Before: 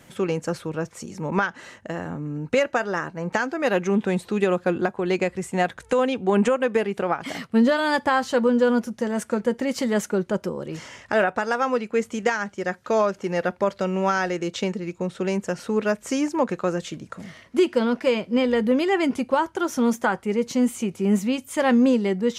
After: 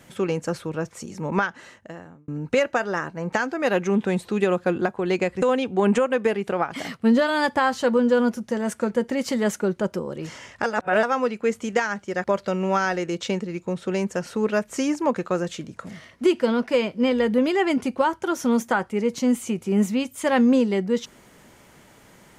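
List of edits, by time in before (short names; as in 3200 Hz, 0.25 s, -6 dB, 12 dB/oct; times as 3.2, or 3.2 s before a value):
1.4–2.28 fade out linear
5.42–5.92 cut
11.14–11.53 reverse
12.74–13.57 cut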